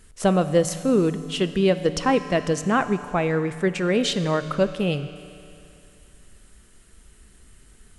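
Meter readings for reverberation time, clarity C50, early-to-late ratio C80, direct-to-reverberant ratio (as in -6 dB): 2.6 s, 11.5 dB, 12.5 dB, 10.5 dB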